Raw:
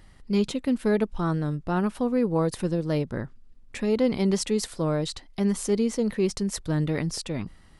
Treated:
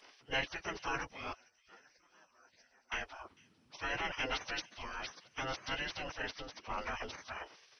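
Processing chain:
partials spread apart or drawn together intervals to 84%
0:01.33–0:02.92: pair of resonant band-passes 3,000 Hz, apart 2.7 octaves
0:06.22–0:06.78: high-shelf EQ 2,100 Hz −10 dB
gate on every frequency bin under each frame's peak −25 dB weak
on a send: delay with a high-pass on its return 450 ms, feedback 56%, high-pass 4,100 Hz, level −16 dB
on the sum: level +7.5 dB

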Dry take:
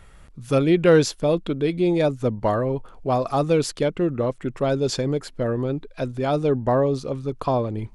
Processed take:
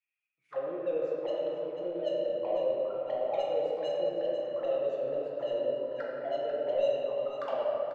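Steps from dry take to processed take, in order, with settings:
noise gate −39 dBFS, range −18 dB
low-shelf EQ 190 Hz −5 dB
in parallel at +1 dB: brickwall limiter −16 dBFS, peak gain reduction 8.5 dB
on the sum: automatic gain control gain up to 8 dB
envelope filter 570–2,500 Hz, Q 22, down, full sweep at −9.5 dBFS
soft clipping −24 dBFS, distortion −7 dB
flanger swept by the level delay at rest 6.3 ms, full sweep at −30 dBFS
on a send: single-tap delay 493 ms −10 dB
on the sum: rectangular room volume 150 cubic metres, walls hard, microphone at 0.8 metres
level −5.5 dB

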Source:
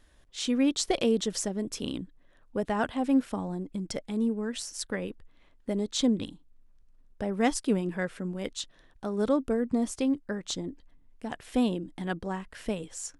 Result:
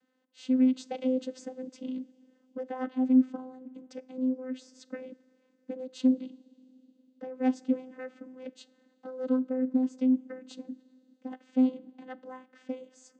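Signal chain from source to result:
coupled-rooms reverb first 0.31 s, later 3.7 s, from −17 dB, DRR 16 dB
channel vocoder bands 16, saw 257 Hz

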